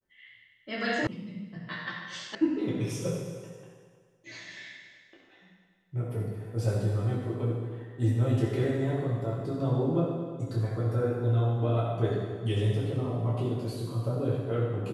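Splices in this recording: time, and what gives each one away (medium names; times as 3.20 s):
1.07 s: sound stops dead
2.35 s: sound stops dead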